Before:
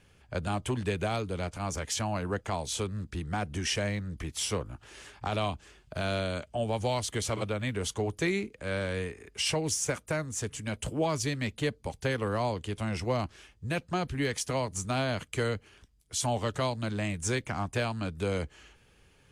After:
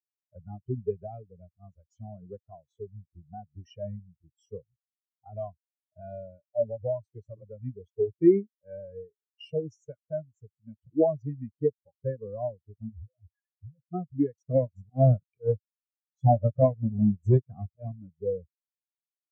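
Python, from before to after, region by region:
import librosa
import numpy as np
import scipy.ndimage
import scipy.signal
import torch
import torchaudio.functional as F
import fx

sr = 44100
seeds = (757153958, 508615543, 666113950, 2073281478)

y = fx.chain(x, sr, fx.spec_expand(power=3.9),
    fx.peak_eq(hz=860.0, db=9.0, octaves=1.2),
    fx.over_compress(threshold_db=-38.0, ratio=-1.0), at=(12.89, 13.86))
y = fx.chain(y, sr, fx.halfwave_hold(),
    fx.low_shelf(hz=140.0, db=-3.5),
    fx.auto_swell(attack_ms=119.0), at=(14.47, 17.96))
y = scipy.signal.sosfilt(scipy.signal.butter(2, 81.0, 'highpass', fs=sr, output='sos'), y)
y = fx.notch(y, sr, hz=910.0, q=14.0)
y = fx.spectral_expand(y, sr, expansion=4.0)
y = y * librosa.db_to_amplitude(6.5)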